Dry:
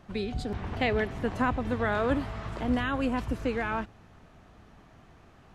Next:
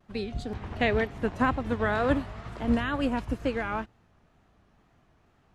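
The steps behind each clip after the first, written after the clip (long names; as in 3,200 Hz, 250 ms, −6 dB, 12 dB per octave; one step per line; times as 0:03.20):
pitch vibrato 2.1 Hz 97 cents
expander for the loud parts 1.5 to 1, over −47 dBFS
level +3 dB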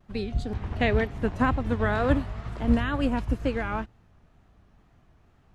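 low-shelf EQ 130 Hz +9 dB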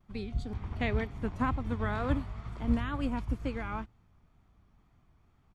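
comb filter 0.9 ms, depth 31%
level −7.5 dB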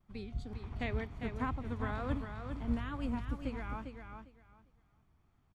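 repeating echo 401 ms, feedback 19%, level −7 dB
level −6 dB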